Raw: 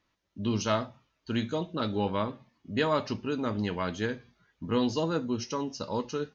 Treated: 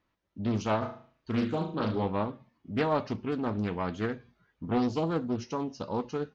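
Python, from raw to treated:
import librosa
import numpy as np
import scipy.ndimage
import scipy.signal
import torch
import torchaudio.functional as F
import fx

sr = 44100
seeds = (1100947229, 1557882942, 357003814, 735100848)

y = fx.high_shelf(x, sr, hz=3200.0, db=-11.5)
y = fx.room_flutter(y, sr, wall_m=6.4, rt60_s=0.44, at=(0.81, 2.04), fade=0.02)
y = fx.doppler_dist(y, sr, depth_ms=0.47)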